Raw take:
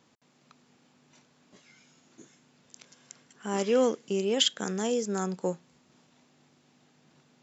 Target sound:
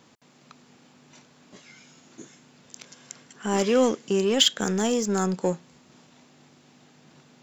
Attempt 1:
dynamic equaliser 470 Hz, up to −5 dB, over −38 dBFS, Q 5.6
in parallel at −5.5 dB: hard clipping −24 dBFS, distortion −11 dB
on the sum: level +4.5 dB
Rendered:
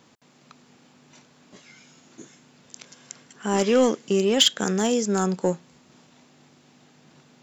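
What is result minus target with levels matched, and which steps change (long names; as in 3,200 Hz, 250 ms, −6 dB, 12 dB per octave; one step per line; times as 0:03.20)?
hard clipping: distortion −7 dB
change: hard clipping −34.5 dBFS, distortion −3 dB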